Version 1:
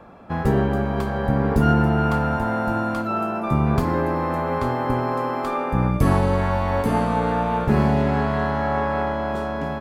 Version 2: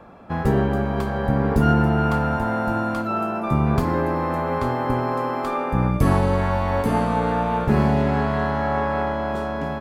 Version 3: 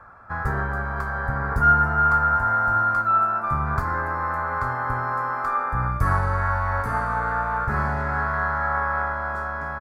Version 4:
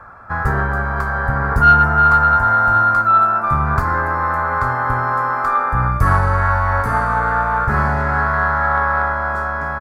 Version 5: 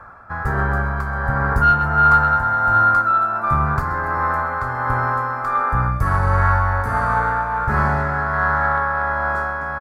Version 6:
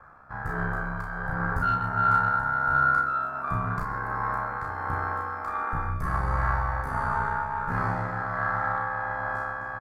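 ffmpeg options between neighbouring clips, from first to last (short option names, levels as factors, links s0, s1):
-af anull
-af "firequalizer=gain_entry='entry(110,0);entry(170,-13);entry(300,-14);entry(1400,11);entry(2900,-17);entry(4700,-6)':delay=0.05:min_phase=1,volume=0.841"
-af "acontrast=33,volume=1.26"
-af "tremolo=f=1.4:d=0.4,aecho=1:1:130|260|390|520|650:0.178|0.0996|0.0558|0.0312|0.0175,volume=0.891"
-filter_complex "[0:a]aeval=exprs='val(0)*sin(2*PI*33*n/s)':c=same,asplit=2[s0][s1];[s1]adelay=35,volume=0.708[s2];[s0][s2]amix=inputs=2:normalize=0,volume=0.398"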